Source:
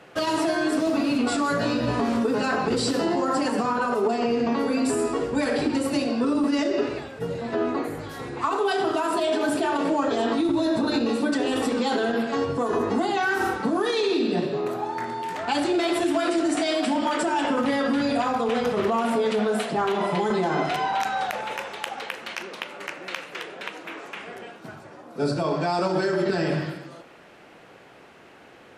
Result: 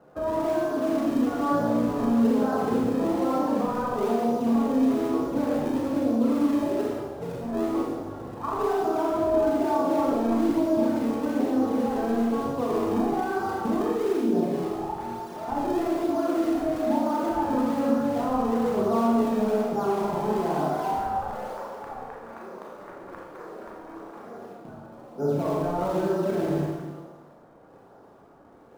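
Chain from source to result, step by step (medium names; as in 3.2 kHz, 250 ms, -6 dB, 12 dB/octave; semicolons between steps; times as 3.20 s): low-pass 1.2 kHz 24 dB/octave; in parallel at -12 dB: decimation with a swept rate 36×, swing 160% 1.1 Hz; on the sum: Schroeder reverb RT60 1.1 s, combs from 27 ms, DRR -2.5 dB; trim -6.5 dB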